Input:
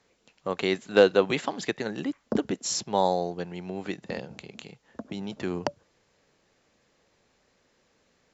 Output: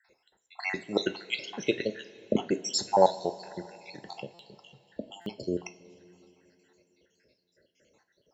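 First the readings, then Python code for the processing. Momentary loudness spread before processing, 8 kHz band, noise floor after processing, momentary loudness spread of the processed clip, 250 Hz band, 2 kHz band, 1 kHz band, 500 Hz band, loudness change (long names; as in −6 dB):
20 LU, can't be measured, −75 dBFS, 21 LU, −4.0 dB, −4.0 dB, −0.5 dB, −4.5 dB, −2.5 dB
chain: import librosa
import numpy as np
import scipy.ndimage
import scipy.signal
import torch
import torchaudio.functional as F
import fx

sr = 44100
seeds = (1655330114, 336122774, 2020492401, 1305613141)

y = fx.spec_dropout(x, sr, seeds[0], share_pct=74)
y = fx.peak_eq(y, sr, hz=230.0, db=-6.5, octaves=0.6)
y = fx.notch_comb(y, sr, f0_hz=1200.0)
y = fx.rev_double_slope(y, sr, seeds[1], early_s=0.3, late_s=3.6, knee_db=-19, drr_db=8.0)
y = fx.buffer_glitch(y, sr, at_s=(4.34, 5.21), block=256, repeats=8)
y = y * 10.0 ** (5.0 / 20.0)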